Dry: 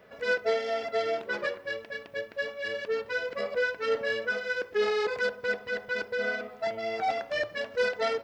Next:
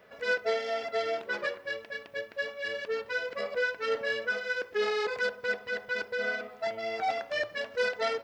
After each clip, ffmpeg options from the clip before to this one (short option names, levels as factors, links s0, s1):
-af "lowshelf=f=490:g=-5"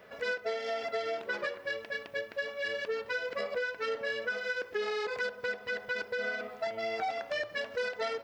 -af "acompressor=threshold=0.02:ratio=5,volume=1.41"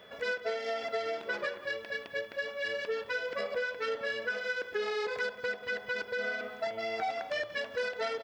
-filter_complex "[0:a]aeval=exprs='val(0)+0.00126*sin(2*PI*3400*n/s)':c=same,asplit=2[s0][s1];[s1]adelay=186.6,volume=0.2,highshelf=f=4000:g=-4.2[s2];[s0][s2]amix=inputs=2:normalize=0"